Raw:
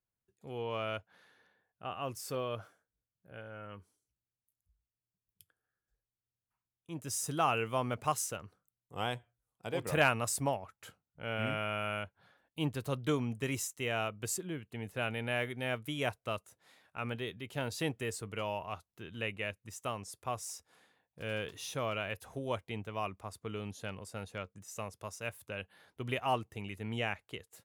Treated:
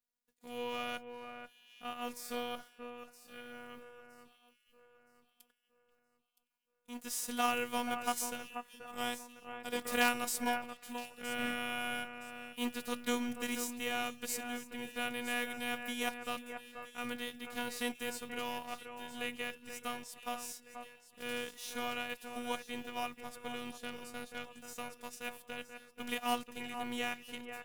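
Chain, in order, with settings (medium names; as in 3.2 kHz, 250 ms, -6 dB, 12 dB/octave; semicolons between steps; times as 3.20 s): formants flattened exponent 0.6; robot voice 242 Hz; echo whose repeats swap between lows and highs 484 ms, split 2.5 kHz, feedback 56%, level -8 dB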